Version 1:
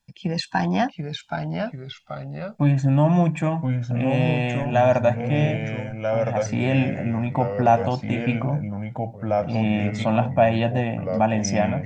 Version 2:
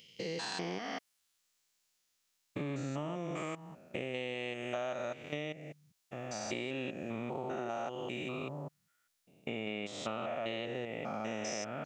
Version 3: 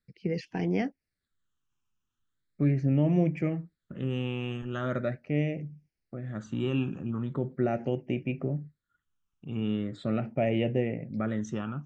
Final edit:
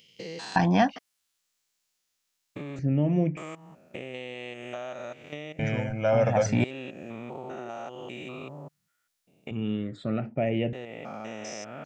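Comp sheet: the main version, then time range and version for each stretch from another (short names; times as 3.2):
2
0.56–0.96 from 1
2.79–3.37 from 3
5.59–6.64 from 1
9.51–10.73 from 3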